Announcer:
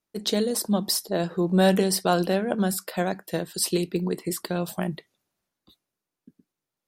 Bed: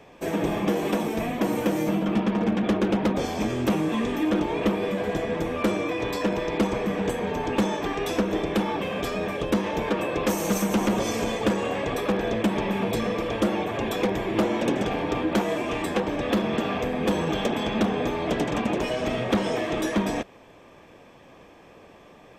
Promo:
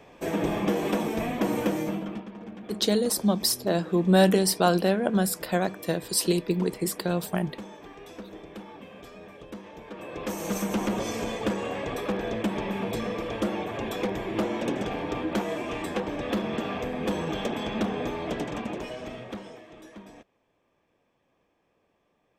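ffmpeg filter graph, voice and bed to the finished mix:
-filter_complex "[0:a]adelay=2550,volume=0.5dB[a];[1:a]volume=11.5dB,afade=t=out:st=1.63:d=0.63:silence=0.158489,afade=t=in:st=9.88:d=0.73:silence=0.223872,afade=t=out:st=18.12:d=1.51:silence=0.141254[b];[a][b]amix=inputs=2:normalize=0"

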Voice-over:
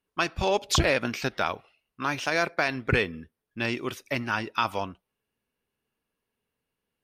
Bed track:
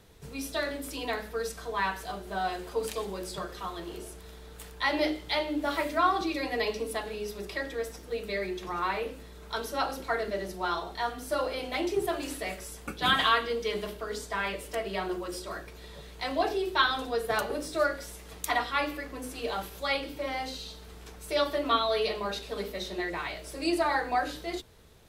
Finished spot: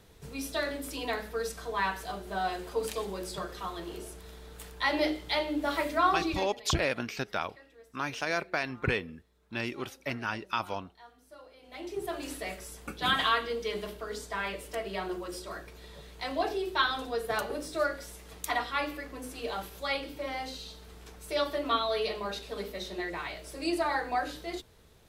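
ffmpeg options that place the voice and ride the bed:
-filter_complex "[0:a]adelay=5950,volume=-5.5dB[a];[1:a]volume=19dB,afade=t=out:st=6.3:d=0.21:silence=0.0841395,afade=t=in:st=11.61:d=0.69:silence=0.105925[b];[a][b]amix=inputs=2:normalize=0"

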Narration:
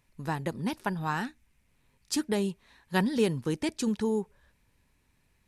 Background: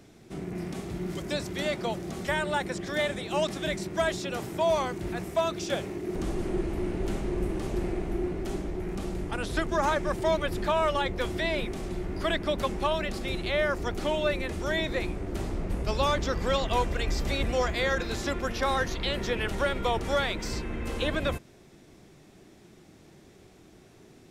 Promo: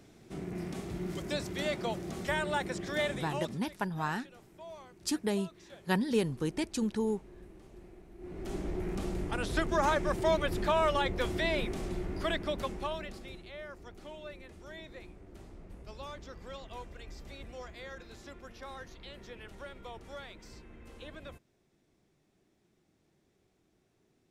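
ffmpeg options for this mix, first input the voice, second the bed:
-filter_complex "[0:a]adelay=2950,volume=-3dB[a];[1:a]volume=17dB,afade=t=out:st=3.11:d=0.5:silence=0.112202,afade=t=in:st=8.18:d=0.52:silence=0.0944061,afade=t=out:st=11.82:d=1.65:silence=0.149624[b];[a][b]amix=inputs=2:normalize=0"

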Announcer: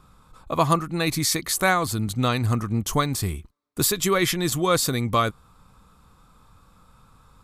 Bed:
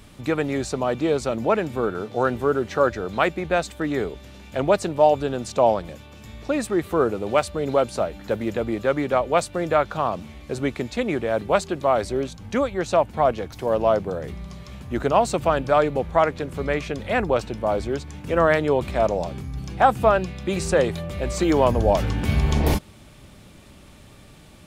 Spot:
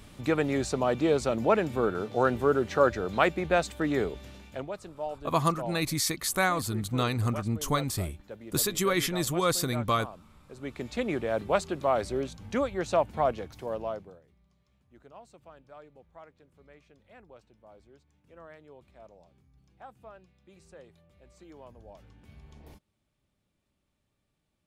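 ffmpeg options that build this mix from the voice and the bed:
-filter_complex "[0:a]adelay=4750,volume=-5.5dB[a];[1:a]volume=10dB,afade=t=out:st=4.28:d=0.41:silence=0.158489,afade=t=in:st=10.56:d=0.41:silence=0.223872,afade=t=out:st=13.15:d=1.08:silence=0.0530884[b];[a][b]amix=inputs=2:normalize=0"

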